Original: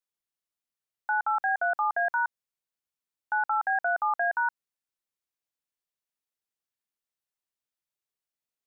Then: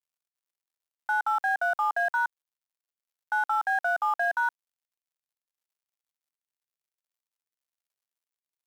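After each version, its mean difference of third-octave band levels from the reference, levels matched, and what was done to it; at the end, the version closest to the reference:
6.5 dB: mu-law and A-law mismatch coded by mu
high-pass filter 490 Hz 12 dB per octave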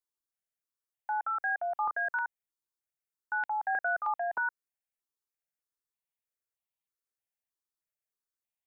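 2.0 dB: step-sequenced phaser 3.2 Hz 620–1,500 Hz
level −2 dB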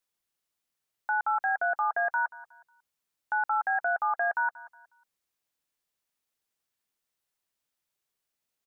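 1.0 dB: brickwall limiter −27 dBFS, peak gain reduction 7.5 dB
on a send: repeating echo 182 ms, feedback 33%, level −19 dB
on the sum: level +6.5 dB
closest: third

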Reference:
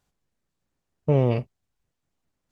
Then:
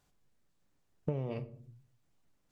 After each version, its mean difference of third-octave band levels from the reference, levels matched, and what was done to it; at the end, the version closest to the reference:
3.5 dB: mains-hum notches 60/120 Hz
rectangular room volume 280 cubic metres, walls furnished, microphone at 0.39 metres
downward compressor 20 to 1, threshold −32 dBFS, peak gain reduction 19.5 dB
level +1 dB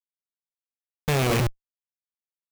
15.5 dB: loose part that buzzes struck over −28 dBFS, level −22 dBFS
mains-hum notches 60/120/180/240/300 Hz
comparator with hysteresis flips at −36 dBFS
level +8 dB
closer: first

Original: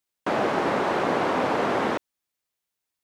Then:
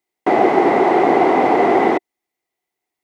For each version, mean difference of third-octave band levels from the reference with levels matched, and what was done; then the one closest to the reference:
6.5 dB: hollow resonant body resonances 370/730/2,000 Hz, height 16 dB, ringing for 20 ms
level −1 dB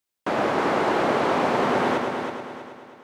1.5 dB: echo machine with several playback heads 107 ms, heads first and third, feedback 54%, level −6.5 dB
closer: second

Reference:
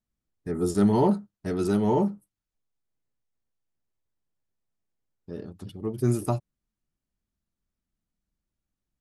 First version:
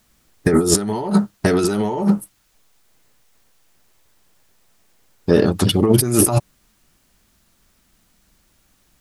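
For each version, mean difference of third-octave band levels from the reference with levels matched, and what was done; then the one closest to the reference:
9.5 dB: low-shelf EQ 420 Hz −9.5 dB
compressor whose output falls as the input rises −40 dBFS, ratio −1
boost into a limiter +24 dB
level −1 dB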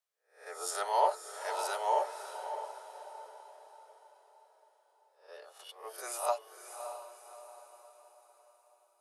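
16.5 dB: peak hold with a rise ahead of every peak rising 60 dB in 0.39 s
Butterworth high-pass 550 Hz 48 dB per octave
on a send: feedback delay with all-pass diffusion 601 ms, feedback 43%, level −9 dB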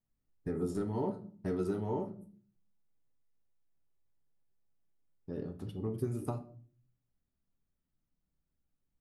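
5.0 dB: parametric band 6,700 Hz −8 dB 3 octaves
downward compressor 6 to 1, threshold −31 dBFS, peak gain reduction 14 dB
rectangular room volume 41 cubic metres, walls mixed, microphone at 0.3 metres
level −1.5 dB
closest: third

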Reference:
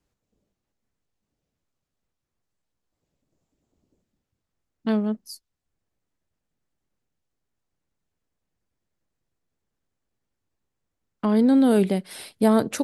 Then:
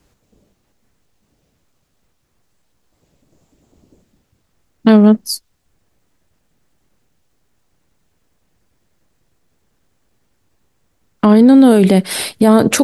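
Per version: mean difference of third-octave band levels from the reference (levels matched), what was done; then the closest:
3.0 dB: boost into a limiter +19.5 dB
level −1 dB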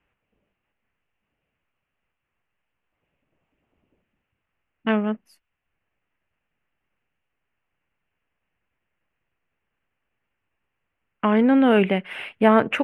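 5.0 dB: drawn EQ curve 310 Hz 0 dB, 2,800 Hz +14 dB, 4,200 Hz −18 dB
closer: first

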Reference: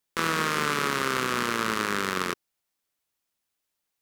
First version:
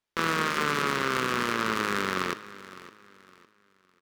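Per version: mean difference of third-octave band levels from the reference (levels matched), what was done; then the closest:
1.5 dB: running median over 5 samples
hum removal 153.3 Hz, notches 37
on a send: repeating echo 559 ms, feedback 32%, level −17 dB
on the sum: linearly interpolated sample-rate reduction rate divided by 2×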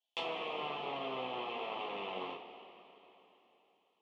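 12.5 dB: loose part that buzzes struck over −36 dBFS, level −17 dBFS
treble cut that deepens with the level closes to 1,300 Hz, closed at −26.5 dBFS
pair of resonant band-passes 1,500 Hz, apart 2.1 octaves
coupled-rooms reverb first 0.27 s, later 3.5 s, from −18 dB, DRR −5 dB
level +1.5 dB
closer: first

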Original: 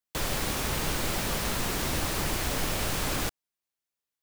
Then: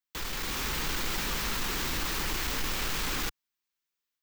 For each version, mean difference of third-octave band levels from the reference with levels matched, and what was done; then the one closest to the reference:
3.0 dB: parametric band 160 Hz −5 dB 3 octaves
soft clipping −28.5 dBFS, distortion −13 dB
graphic EQ with 15 bands 100 Hz −8 dB, 630 Hz −10 dB, 10,000 Hz −8 dB
automatic gain control gain up to 4 dB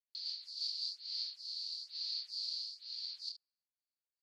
36.0 dB: rotating-speaker cabinet horn 6 Hz, later 0.85 Hz, at 0:00.45
flat-topped band-pass 4,500 Hz, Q 6.9
on a send: ambience of single reflections 25 ms −4 dB, 71 ms −14 dB
on the sum: phaser with staggered stages 1.1 Hz
level +9.5 dB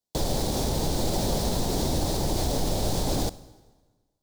5.0 dB: high-shelf EQ 6,900 Hz −11 dB
dense smooth reverb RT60 1.4 s, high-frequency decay 0.85×, DRR 18 dB
brickwall limiter −22.5 dBFS, peak gain reduction 4 dB
flat-topped bell 1,800 Hz −15.5 dB
level +7.5 dB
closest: first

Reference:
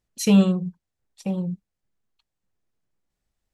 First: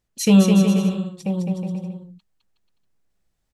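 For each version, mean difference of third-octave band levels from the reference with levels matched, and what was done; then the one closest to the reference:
5.5 dB: bouncing-ball delay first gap 210 ms, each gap 0.75×, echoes 5
level +2.5 dB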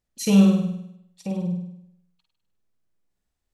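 4.0 dB: flutter between parallel walls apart 8.7 metres, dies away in 0.75 s
level −3 dB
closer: second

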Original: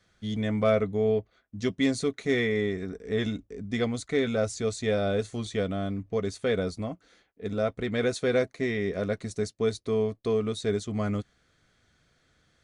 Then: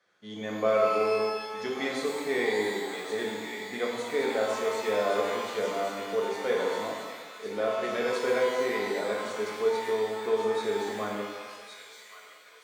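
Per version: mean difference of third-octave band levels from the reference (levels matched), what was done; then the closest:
12.0 dB: high-pass filter 480 Hz 12 dB per octave
high-shelf EQ 2,800 Hz −12 dB
delay with a high-pass on its return 1,119 ms, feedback 57%, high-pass 1,900 Hz, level −5.5 dB
reverb with rising layers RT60 1.5 s, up +12 semitones, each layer −8 dB, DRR −2 dB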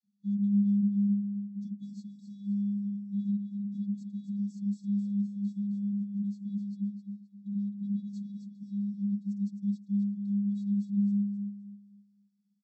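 20.0 dB: parametric band 3,300 Hz −11.5 dB 0.42 octaves
channel vocoder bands 32, square 202 Hz
linear-phase brick-wall band-stop 500–3,200 Hz
on a send: repeating echo 262 ms, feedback 29%, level −7 dB
on the sum: level −4 dB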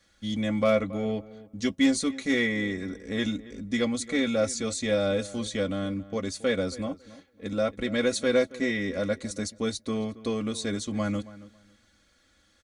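4.0 dB: high-shelf EQ 3,500 Hz +6.5 dB
comb filter 3.6 ms, depth 75%
in parallel at −4.5 dB: asymmetric clip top −17 dBFS
on the sum: feedback echo with a low-pass in the loop 275 ms, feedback 21%, low-pass 2,400 Hz, level −17.5 dB
level −5 dB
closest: third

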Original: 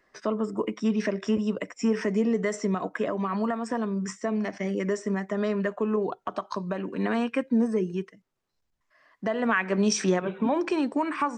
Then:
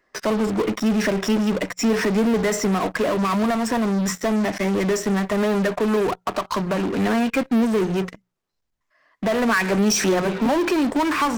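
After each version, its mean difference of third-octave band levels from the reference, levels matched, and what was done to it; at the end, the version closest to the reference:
8.5 dB: mains-hum notches 60/120/180 Hz
in parallel at −10.5 dB: fuzz pedal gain 41 dB, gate −48 dBFS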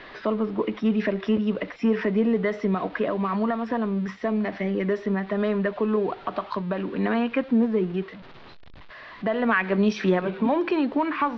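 3.0 dB: converter with a step at zero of −39.5 dBFS
Butterworth low-pass 4,100 Hz 36 dB per octave
level +2 dB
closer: second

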